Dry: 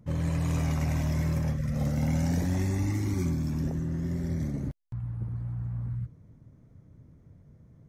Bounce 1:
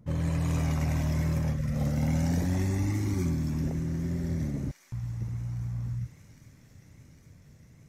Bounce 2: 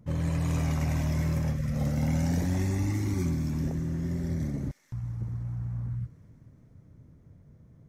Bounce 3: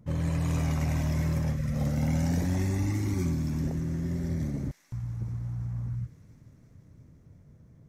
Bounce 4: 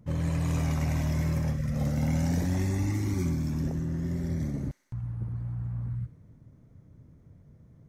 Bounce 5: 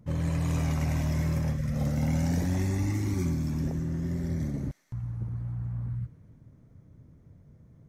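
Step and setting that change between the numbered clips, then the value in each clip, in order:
delay with a high-pass on its return, delay time: 808, 217, 344, 63, 113 milliseconds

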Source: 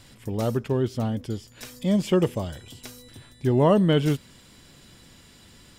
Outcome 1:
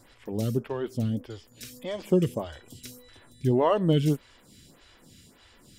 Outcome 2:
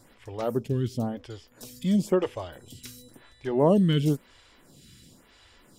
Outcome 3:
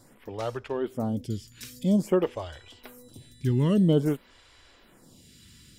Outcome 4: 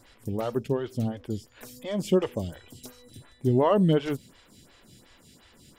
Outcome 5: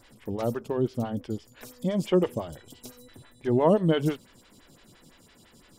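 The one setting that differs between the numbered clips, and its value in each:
phaser with staggered stages, speed: 1.7, 0.97, 0.5, 2.8, 5.9 Hertz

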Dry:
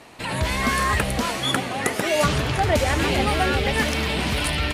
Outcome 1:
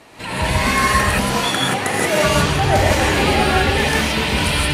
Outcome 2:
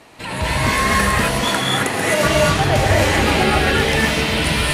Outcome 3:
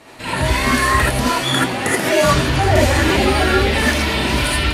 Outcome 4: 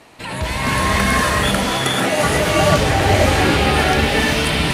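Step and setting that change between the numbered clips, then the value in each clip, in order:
reverb whose tail is shaped and stops, gate: 200, 290, 100, 520 milliseconds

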